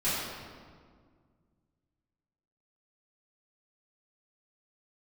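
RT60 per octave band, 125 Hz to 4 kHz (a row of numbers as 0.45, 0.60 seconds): 2.8, 2.5, 2.0, 1.7, 1.4, 1.2 seconds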